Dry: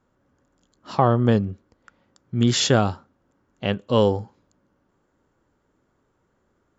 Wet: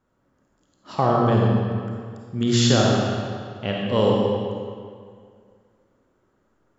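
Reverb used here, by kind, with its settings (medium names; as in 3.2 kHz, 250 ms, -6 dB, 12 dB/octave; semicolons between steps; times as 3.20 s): algorithmic reverb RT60 2.1 s, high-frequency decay 0.8×, pre-delay 10 ms, DRR -3 dB; trim -3.5 dB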